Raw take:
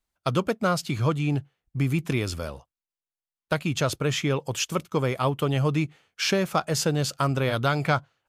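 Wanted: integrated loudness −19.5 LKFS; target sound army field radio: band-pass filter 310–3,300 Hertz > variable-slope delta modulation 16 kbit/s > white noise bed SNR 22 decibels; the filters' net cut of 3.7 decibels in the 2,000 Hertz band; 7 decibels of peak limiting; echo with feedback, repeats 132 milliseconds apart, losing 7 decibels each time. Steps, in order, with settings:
parametric band 2,000 Hz −4.5 dB
brickwall limiter −18.5 dBFS
band-pass filter 310–3,300 Hz
repeating echo 132 ms, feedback 45%, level −7 dB
variable-slope delta modulation 16 kbit/s
white noise bed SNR 22 dB
level +14 dB

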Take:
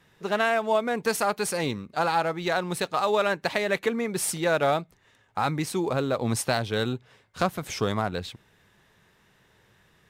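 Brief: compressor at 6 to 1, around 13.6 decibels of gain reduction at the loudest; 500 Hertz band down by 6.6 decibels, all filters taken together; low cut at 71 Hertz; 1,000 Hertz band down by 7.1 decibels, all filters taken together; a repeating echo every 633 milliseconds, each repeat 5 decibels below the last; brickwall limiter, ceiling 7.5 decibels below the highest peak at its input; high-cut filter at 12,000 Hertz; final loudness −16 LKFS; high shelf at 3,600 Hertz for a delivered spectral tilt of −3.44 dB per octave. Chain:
high-pass filter 71 Hz
low-pass filter 12,000 Hz
parametric band 500 Hz −6 dB
parametric band 1,000 Hz −8.5 dB
high-shelf EQ 3,600 Hz +7.5 dB
downward compressor 6 to 1, threshold −35 dBFS
brickwall limiter −27.5 dBFS
repeating echo 633 ms, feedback 56%, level −5 dB
level +22.5 dB

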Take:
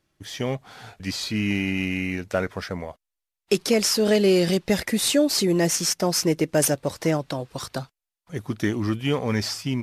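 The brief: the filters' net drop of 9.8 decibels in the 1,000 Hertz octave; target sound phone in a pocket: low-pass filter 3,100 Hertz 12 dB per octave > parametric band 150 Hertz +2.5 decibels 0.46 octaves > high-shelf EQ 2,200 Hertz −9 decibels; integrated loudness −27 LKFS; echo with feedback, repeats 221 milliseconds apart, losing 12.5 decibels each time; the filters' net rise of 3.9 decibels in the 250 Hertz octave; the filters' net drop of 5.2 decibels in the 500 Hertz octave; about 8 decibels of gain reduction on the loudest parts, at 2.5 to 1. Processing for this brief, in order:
parametric band 250 Hz +8 dB
parametric band 500 Hz −8.5 dB
parametric band 1,000 Hz −9 dB
downward compressor 2.5 to 1, threshold −26 dBFS
low-pass filter 3,100 Hz 12 dB per octave
parametric band 150 Hz +2.5 dB 0.46 octaves
high-shelf EQ 2,200 Hz −9 dB
repeating echo 221 ms, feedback 24%, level −12.5 dB
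level +2 dB

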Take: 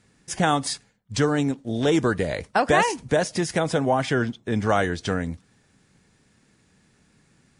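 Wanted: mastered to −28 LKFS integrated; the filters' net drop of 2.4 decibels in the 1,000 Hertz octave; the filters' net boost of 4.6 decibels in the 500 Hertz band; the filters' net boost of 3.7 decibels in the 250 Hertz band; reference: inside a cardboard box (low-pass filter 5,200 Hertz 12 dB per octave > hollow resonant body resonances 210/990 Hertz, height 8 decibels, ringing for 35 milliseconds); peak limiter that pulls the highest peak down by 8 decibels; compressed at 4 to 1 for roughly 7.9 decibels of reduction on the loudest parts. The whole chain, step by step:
parametric band 250 Hz +3 dB
parametric band 500 Hz +6.5 dB
parametric band 1,000 Hz −7 dB
downward compressor 4 to 1, threshold −21 dBFS
brickwall limiter −18.5 dBFS
low-pass filter 5,200 Hz 12 dB per octave
hollow resonant body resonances 210/990 Hz, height 8 dB, ringing for 35 ms
level −2 dB

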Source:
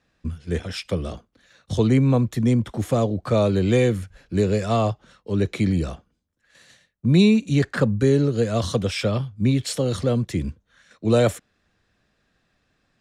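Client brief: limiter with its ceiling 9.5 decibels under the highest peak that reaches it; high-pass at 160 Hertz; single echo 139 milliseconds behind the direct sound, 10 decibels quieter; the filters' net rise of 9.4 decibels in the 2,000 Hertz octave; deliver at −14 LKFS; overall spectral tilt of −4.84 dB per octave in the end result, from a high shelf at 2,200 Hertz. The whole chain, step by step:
high-pass filter 160 Hz
parametric band 2,000 Hz +8 dB
high-shelf EQ 2,200 Hz +6.5 dB
brickwall limiter −13.5 dBFS
single-tap delay 139 ms −10 dB
level +10 dB

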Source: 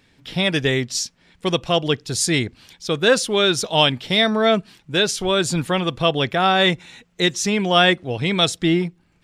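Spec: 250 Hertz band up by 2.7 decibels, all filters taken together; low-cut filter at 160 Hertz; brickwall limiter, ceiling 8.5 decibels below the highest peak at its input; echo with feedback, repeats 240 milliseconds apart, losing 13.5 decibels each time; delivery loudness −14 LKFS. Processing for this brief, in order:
high-pass filter 160 Hz
parametric band 250 Hz +5.5 dB
brickwall limiter −8.5 dBFS
repeating echo 240 ms, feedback 21%, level −13.5 dB
level +6.5 dB

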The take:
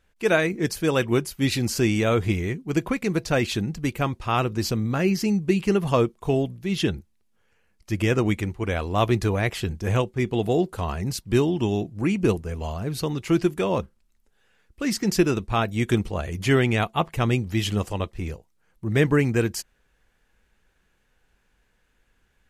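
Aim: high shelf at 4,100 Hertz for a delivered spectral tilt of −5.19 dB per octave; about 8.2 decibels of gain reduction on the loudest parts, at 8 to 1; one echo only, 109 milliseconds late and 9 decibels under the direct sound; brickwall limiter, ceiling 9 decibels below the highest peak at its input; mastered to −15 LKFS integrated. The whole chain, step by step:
high-shelf EQ 4,100 Hz +4 dB
downward compressor 8 to 1, threshold −23 dBFS
brickwall limiter −21.5 dBFS
single-tap delay 109 ms −9 dB
level +16 dB

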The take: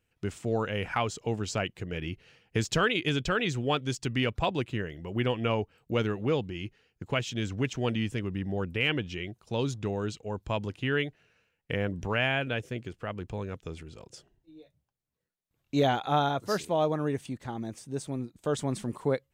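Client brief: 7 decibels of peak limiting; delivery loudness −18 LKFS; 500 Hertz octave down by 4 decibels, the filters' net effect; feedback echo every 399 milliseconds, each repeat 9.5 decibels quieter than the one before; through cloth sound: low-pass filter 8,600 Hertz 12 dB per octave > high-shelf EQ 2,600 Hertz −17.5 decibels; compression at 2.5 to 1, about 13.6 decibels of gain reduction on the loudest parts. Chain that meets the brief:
parametric band 500 Hz −4 dB
downward compressor 2.5 to 1, threshold −44 dBFS
brickwall limiter −32.5 dBFS
low-pass filter 8,600 Hz 12 dB per octave
high-shelf EQ 2,600 Hz −17.5 dB
repeating echo 399 ms, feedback 33%, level −9.5 dB
level +28 dB

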